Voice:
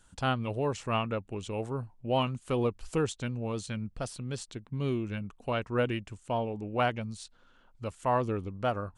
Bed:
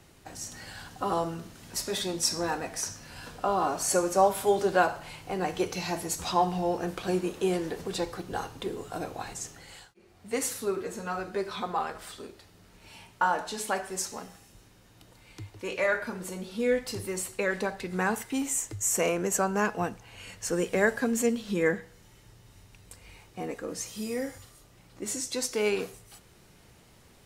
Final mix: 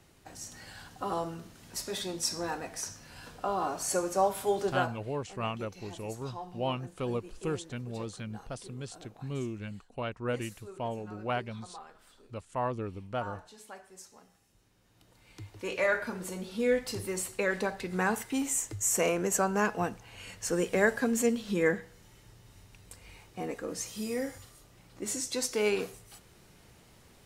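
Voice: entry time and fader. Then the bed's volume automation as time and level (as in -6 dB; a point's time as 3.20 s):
4.50 s, -4.5 dB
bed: 4.68 s -4.5 dB
5.17 s -17.5 dB
14.13 s -17.5 dB
15.62 s -1 dB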